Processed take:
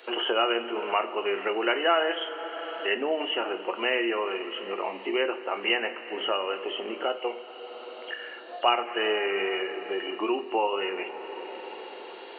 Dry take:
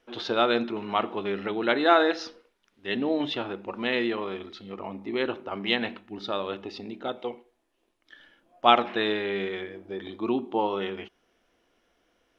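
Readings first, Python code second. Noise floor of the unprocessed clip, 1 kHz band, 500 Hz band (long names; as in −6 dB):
−72 dBFS, −1.0 dB, +0.5 dB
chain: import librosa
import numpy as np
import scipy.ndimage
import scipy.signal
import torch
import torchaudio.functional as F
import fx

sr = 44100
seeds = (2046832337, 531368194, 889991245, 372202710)

y = fx.freq_compress(x, sr, knee_hz=2700.0, ratio=4.0)
y = scipy.signal.sosfilt(scipy.signal.butter(4, 370.0, 'highpass', fs=sr, output='sos'), y)
y = fx.wow_flutter(y, sr, seeds[0], rate_hz=2.1, depth_cents=16.0)
y = fx.rev_double_slope(y, sr, seeds[1], early_s=0.24, late_s=3.5, knee_db=-18, drr_db=7.0)
y = fx.band_squash(y, sr, depth_pct=70)
y = y * librosa.db_to_amplitude(1.5)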